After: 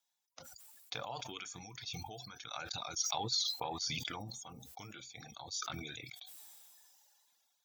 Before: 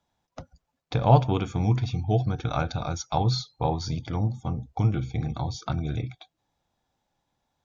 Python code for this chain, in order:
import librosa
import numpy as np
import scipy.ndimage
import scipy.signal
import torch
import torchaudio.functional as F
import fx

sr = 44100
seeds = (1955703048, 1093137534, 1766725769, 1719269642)

p1 = fx.wow_flutter(x, sr, seeds[0], rate_hz=2.1, depth_cents=23.0)
p2 = fx.dereverb_blind(p1, sr, rt60_s=1.5)
p3 = fx.over_compress(p2, sr, threshold_db=-28.0, ratio=-1.0)
p4 = p2 + (p3 * 10.0 ** (0.0 / 20.0))
p5 = np.diff(p4, prepend=0.0)
p6 = fx.sustainer(p5, sr, db_per_s=22.0)
y = p6 * 10.0 ** (-5.0 / 20.0)